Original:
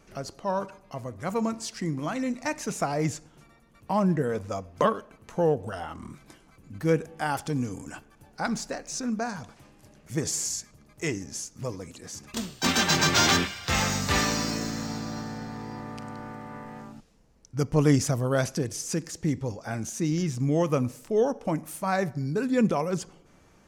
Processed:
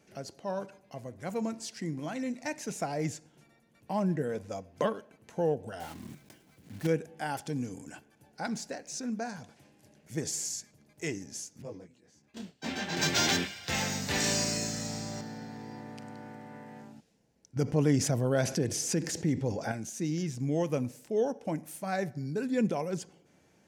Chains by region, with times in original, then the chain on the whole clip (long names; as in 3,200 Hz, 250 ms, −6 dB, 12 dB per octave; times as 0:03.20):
0:05.80–0:06.87: one scale factor per block 3 bits + low-shelf EQ 240 Hz +5 dB
0:11.62–0:12.97: low-pass filter 2,400 Hz 6 dB per octave + noise gate −41 dBFS, range −8 dB + micro pitch shift up and down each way 22 cents
0:14.20–0:15.21: parametric band 7,900 Hz +9 dB 0.78 octaves + double-tracking delay 20 ms −10.5 dB + flutter between parallel walls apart 6.1 metres, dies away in 0.43 s
0:17.56–0:19.72: high-shelf EQ 3,900 Hz −6 dB + envelope flattener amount 50%
whole clip: high-pass filter 110 Hz; parametric band 1,200 Hz −13.5 dB 0.22 octaves; notch filter 950 Hz, Q 18; level −5 dB